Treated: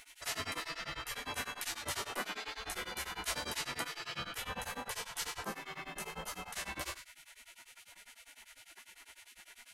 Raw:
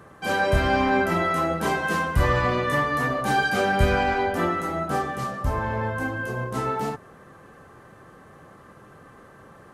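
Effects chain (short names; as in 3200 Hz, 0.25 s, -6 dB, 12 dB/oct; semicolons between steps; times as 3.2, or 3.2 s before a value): spectral trails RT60 0.46 s; 4.01–6.55 comb 3.1 ms, depth 44%; compressor 4:1, threshold -32 dBFS, peak gain reduction 16 dB; spectral gate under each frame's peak -20 dB weak; beating tremolo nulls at 10 Hz; gain +10.5 dB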